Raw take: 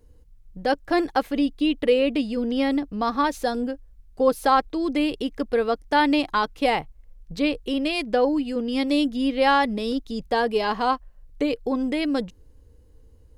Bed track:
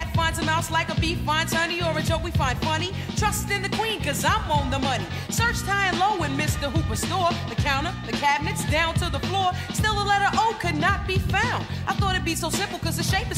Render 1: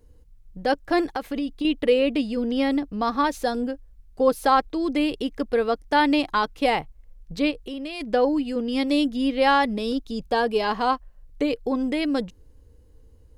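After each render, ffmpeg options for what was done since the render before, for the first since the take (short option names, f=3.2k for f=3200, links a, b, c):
-filter_complex "[0:a]asettb=1/sr,asplit=3[a][b][c];[a]atrim=end=1.074[d];[b]atrim=start=1.07:end=1.65,asetpts=PTS-STARTPTS,afade=t=in:d=0.004:c=qsin,afade=t=out:st=0.576:d=0.004:c=qsin,acompressor=threshold=-23dB:ratio=6:attack=3.2:release=140:knee=1:detection=peak[e];[c]atrim=start=1.646[f];[d][e]acrossfade=d=0.004:c1=hsin:c2=qsin[g];[g][f]acrossfade=d=0.004:c1=qsin:c2=hsin,asplit=3[h][i][j];[h]afade=t=out:st=7.5:d=0.02[k];[i]acompressor=threshold=-33dB:ratio=2.5:attack=3.2:release=140:knee=1:detection=peak,afade=t=in:st=7.5:d=0.02,afade=t=out:st=8:d=0.02[l];[j]afade=t=in:st=8:d=0.02[m];[k][l][m]amix=inputs=3:normalize=0,asettb=1/sr,asplit=3[n][o][p];[n]atrim=end=9.794[q];[o]atrim=start=9.79:end=10.59,asetpts=PTS-STARTPTS,afade=t=in:d=0.004:c=qsin,afade=t=out:st=0.796:d=0.004:c=qsin,asuperstop=centerf=2000:order=4:qfactor=7.8[r];[p]atrim=start=10.586[s];[q][r]acrossfade=d=0.004:c1=hsin:c2=qsin[t];[t][s]acrossfade=d=0.004:c1=qsin:c2=hsin"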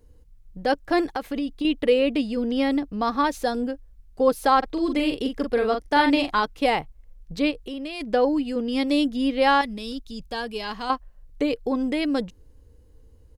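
-filter_complex "[0:a]asplit=3[a][b][c];[a]afade=t=out:st=4.62:d=0.02[d];[b]asplit=2[e][f];[f]adelay=42,volume=-5.5dB[g];[e][g]amix=inputs=2:normalize=0,afade=t=in:st=4.62:d=0.02,afade=t=out:st=6.39:d=0.02[h];[c]afade=t=in:st=6.39:d=0.02[i];[d][h][i]amix=inputs=3:normalize=0,asettb=1/sr,asplit=3[j][k][l];[j]atrim=end=9.614[m];[k]atrim=start=9.61:end=10.9,asetpts=PTS-STARTPTS,afade=t=in:d=0.004:c=qsin,afade=t=out:st=1.286:d=0.004:c=qsin,equalizer=f=560:t=o:w=3:g=-10.5[n];[l]atrim=start=10.896[o];[m][n]acrossfade=d=0.004:c1=hsin:c2=qsin[p];[p][o]acrossfade=d=0.004:c1=qsin:c2=hsin"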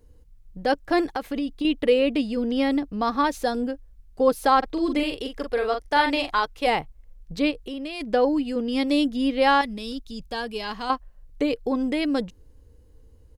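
-filter_complex "[0:a]asettb=1/sr,asplit=3[a][b][c];[a]atrim=end=5.034[d];[b]atrim=start=5.03:end=6.67,asetpts=PTS-STARTPTS,afade=t=in:d=0.004:c=qsin,afade=t=out:st=1.636:d=0.004:c=qsin,equalizer=f=220:t=o:w=1.1:g=-10.5[e];[c]atrim=start=6.666[f];[d][e]acrossfade=d=0.004:c1=hsin:c2=qsin[g];[g][f]acrossfade=d=0.004:c1=qsin:c2=hsin"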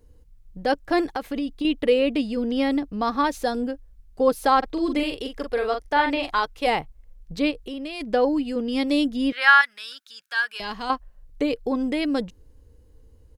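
-filter_complex "[0:a]asettb=1/sr,asplit=3[a][b][c];[a]atrim=end=5.794[d];[b]atrim=start=5.79:end=6.23,asetpts=PTS-STARTPTS,afade=t=in:d=0.004:c=qsin,afade=t=out:st=0.436:d=0.004:c=qsin,acrossover=split=3500[e][f];[f]acompressor=threshold=-46dB:ratio=4:attack=1:release=60[g];[e][g]amix=inputs=2:normalize=0[h];[c]atrim=start=6.226[i];[d][h]acrossfade=d=0.004:c1=hsin:c2=qsin[j];[j][i]acrossfade=d=0.004:c1=qsin:c2=hsin,asettb=1/sr,asplit=3[k][l][m];[k]atrim=end=9.324[n];[l]atrim=start=9.32:end=10.6,asetpts=PTS-STARTPTS,afade=t=in:d=0.004:c=qsin,afade=t=out:st=1.276:d=0.004:c=qsin,highpass=f=1.5k:t=q:w=5.3[o];[m]atrim=start=10.596[p];[n][o]acrossfade=d=0.004:c1=hsin:c2=qsin[q];[q][p]acrossfade=d=0.004:c1=qsin:c2=hsin"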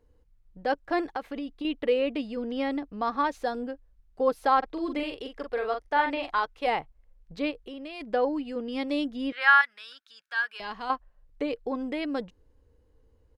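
-af "lowpass=f=1.5k:p=1,lowshelf=f=430:g=-11"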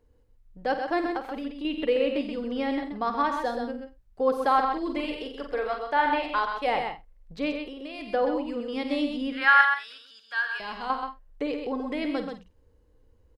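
-filter_complex "[0:a]asplit=2[a][b];[b]adelay=50,volume=-11dB[c];[a][c]amix=inputs=2:normalize=0,aecho=1:1:88|129|178:0.211|0.501|0.112"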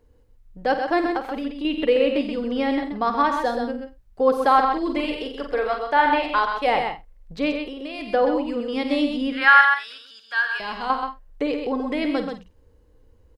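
-af "volume=5.5dB,alimiter=limit=-3dB:level=0:latency=1"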